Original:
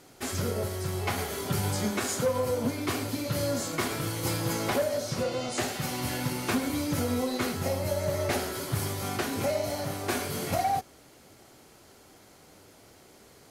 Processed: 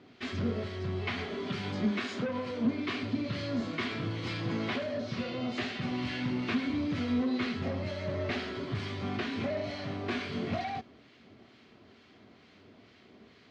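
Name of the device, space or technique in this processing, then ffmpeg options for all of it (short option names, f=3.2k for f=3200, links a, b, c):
guitar amplifier with harmonic tremolo: -filter_complex "[0:a]asettb=1/sr,asplit=3[a][b][c];[a]atrim=end=1.254[d];[b]atrim=start=1.25:end=3.03,asetpts=PTS-STARTPTS,afade=t=in:d=0.004:c=qsin,afade=t=out:st=1.776:d=0.004:c=qsin,highpass=130[e];[c]atrim=start=3.026[f];[d][e]acrossfade=d=0.004:c1=hsin:c2=qsin[g];[g][f]acrossfade=d=0.004:c1=qsin:c2=hsin,acrossover=split=1200[h][i];[h]aeval=exprs='val(0)*(1-0.5/2+0.5/2*cos(2*PI*2.2*n/s))':c=same[j];[i]aeval=exprs='val(0)*(1-0.5/2-0.5/2*cos(2*PI*2.2*n/s))':c=same[k];[j][k]amix=inputs=2:normalize=0,asoftclip=type=tanh:threshold=-25.5dB,highpass=92,equalizer=f=150:t=q:w=4:g=-5,equalizer=f=230:t=q:w=4:g=6,equalizer=f=320:t=q:w=4:g=-3,equalizer=f=530:t=q:w=4:g=-8,equalizer=f=850:t=q:w=4:g=-10,equalizer=f=1.4k:t=q:w=4:g=-5,lowpass=f=3.8k:w=0.5412,lowpass=f=3.8k:w=1.3066,volume=3dB"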